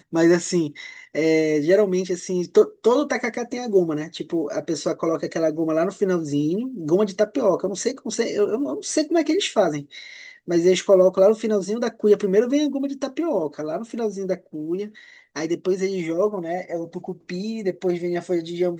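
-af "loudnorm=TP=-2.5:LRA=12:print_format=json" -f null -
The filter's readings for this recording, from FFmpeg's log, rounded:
"input_i" : "-22.6",
"input_tp" : "-4.8",
"input_lra" : "5.8",
"input_thresh" : "-32.8",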